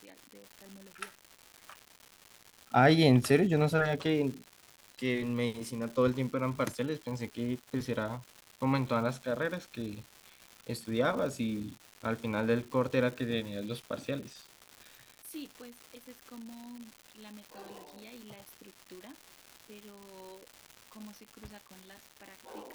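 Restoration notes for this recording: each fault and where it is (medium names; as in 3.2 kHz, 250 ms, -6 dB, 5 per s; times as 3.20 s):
crackle 350 per s -40 dBFS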